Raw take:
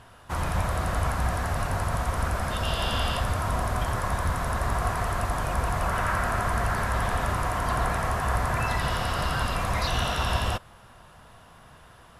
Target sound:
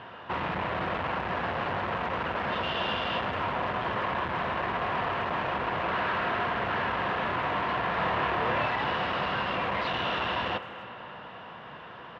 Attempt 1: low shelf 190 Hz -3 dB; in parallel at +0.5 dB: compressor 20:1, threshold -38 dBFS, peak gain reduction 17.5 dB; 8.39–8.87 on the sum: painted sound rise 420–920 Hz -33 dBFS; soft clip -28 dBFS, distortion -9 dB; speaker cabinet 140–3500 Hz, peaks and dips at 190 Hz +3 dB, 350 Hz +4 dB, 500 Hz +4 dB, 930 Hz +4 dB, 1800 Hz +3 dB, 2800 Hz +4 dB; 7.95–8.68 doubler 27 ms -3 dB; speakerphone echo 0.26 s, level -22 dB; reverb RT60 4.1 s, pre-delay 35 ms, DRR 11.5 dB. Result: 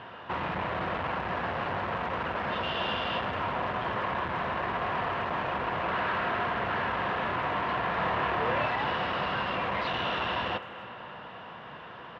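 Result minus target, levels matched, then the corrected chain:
compressor: peak gain reduction +9.5 dB
low shelf 190 Hz -3 dB; in parallel at +0.5 dB: compressor 20:1, threshold -28 dBFS, peak gain reduction 8 dB; 8.39–8.87 on the sum: painted sound rise 420–920 Hz -33 dBFS; soft clip -28 dBFS, distortion -8 dB; speaker cabinet 140–3500 Hz, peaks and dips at 190 Hz +3 dB, 350 Hz +4 dB, 500 Hz +4 dB, 930 Hz +4 dB, 1800 Hz +3 dB, 2800 Hz +4 dB; 7.95–8.68 doubler 27 ms -3 dB; speakerphone echo 0.26 s, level -22 dB; reverb RT60 4.1 s, pre-delay 35 ms, DRR 11.5 dB

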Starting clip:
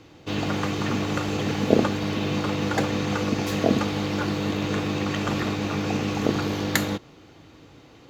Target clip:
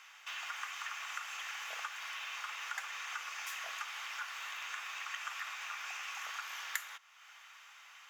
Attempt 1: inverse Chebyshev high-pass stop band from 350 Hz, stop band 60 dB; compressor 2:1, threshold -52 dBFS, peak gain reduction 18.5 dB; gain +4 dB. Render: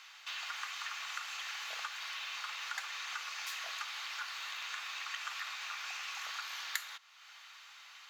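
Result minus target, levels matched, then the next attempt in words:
4000 Hz band +3.0 dB
inverse Chebyshev high-pass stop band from 350 Hz, stop band 60 dB; bell 4200 Hz -12 dB 0.44 oct; compressor 2:1, threshold -52 dBFS, peak gain reduction 17.5 dB; gain +4 dB

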